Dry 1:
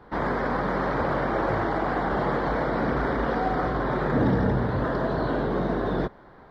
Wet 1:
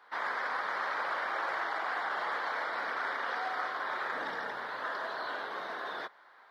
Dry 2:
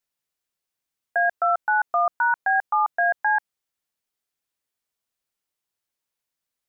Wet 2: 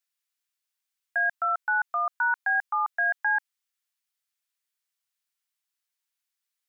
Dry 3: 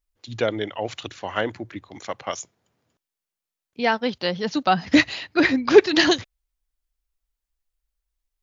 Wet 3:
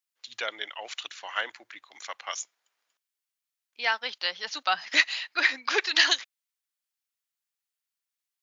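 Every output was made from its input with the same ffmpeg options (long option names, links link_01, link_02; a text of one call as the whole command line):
ffmpeg -i in.wav -af "highpass=1300" out.wav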